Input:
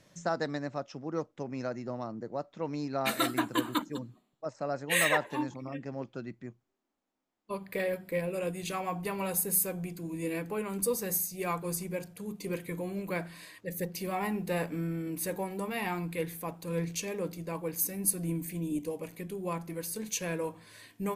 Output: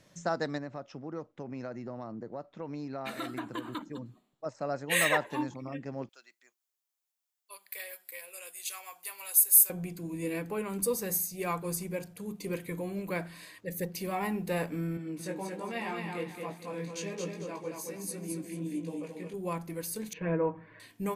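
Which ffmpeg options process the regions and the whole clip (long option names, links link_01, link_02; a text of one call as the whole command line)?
ffmpeg -i in.wav -filter_complex "[0:a]asettb=1/sr,asplit=3[link_01][link_02][link_03];[link_01]atrim=end=0.584[link_04];[link_02]atrim=start=0.58:end=4.06,asetpts=PTS-STARTPTS,afade=type=in:duration=0.004:curve=qsin,afade=type=out:start_time=3.476:duration=0.004:curve=qsin,highshelf=frequency=5500:gain=-11.5,acompressor=threshold=-36dB:ratio=2.5:attack=3.2:release=140:knee=1:detection=peak[link_05];[link_03]atrim=start=4.056[link_06];[link_04][link_05]acrossfade=duration=0.004:curve1=hsin:curve2=qsin[link_07];[link_07][link_06]acrossfade=duration=0.004:curve1=qsin:curve2=hsin,asettb=1/sr,asplit=3[link_08][link_09][link_10];[link_08]atrim=end=6.094[link_11];[link_09]atrim=start=6.09:end=9.7,asetpts=PTS-STARTPTS,afade=type=in:duration=0.004:curve=qsin,afade=type=out:start_time=3.606:duration=0.004:curve=qsin,highpass=470,aderivative,acontrast=27[link_12];[link_10]atrim=start=9.696[link_13];[link_11][link_12]acrossfade=duration=0.004:curve1=hsin:curve2=qsin[link_14];[link_14][link_13]acrossfade=duration=0.004:curve1=qsin:curve2=hsin,asettb=1/sr,asplit=3[link_15][link_16][link_17];[link_15]atrim=end=14.974[link_18];[link_16]atrim=start=14.97:end=19.34,asetpts=PTS-STARTPTS,afade=type=in:duration=0.004:curve=qsin,afade=type=out:start_time=4.366:duration=0.004:curve=qsin,flanger=delay=17:depth=5.3:speed=1.3,highpass=140,lowpass=7300,aecho=1:1:222|444|666|888:0.631|0.202|0.0646|0.0207,atrim=end_sample=192717[link_19];[link_17]atrim=start=19.336[link_20];[link_18][link_19]acrossfade=duration=0.004:curve1=hsin:curve2=qsin[link_21];[link_21][link_20]acrossfade=duration=0.004:curve1=qsin:curve2=hsin,asettb=1/sr,asplit=3[link_22][link_23][link_24];[link_22]atrim=end=20.134[link_25];[link_23]atrim=start=20.13:end=20.8,asetpts=PTS-STARTPTS,afade=type=in:duration=0.004:curve=qsin,afade=type=out:start_time=0.666:duration=0.004:curve=qsin,lowpass=frequency=2000:width=0.5412,lowpass=frequency=2000:width=1.3066,aecho=1:1:6.3:0.92,atrim=end_sample=29547[link_26];[link_24]atrim=start=20.796[link_27];[link_25][link_26]acrossfade=duration=0.004:curve1=hsin:curve2=qsin[link_28];[link_28][link_27]acrossfade=duration=0.004:curve1=qsin:curve2=hsin" out.wav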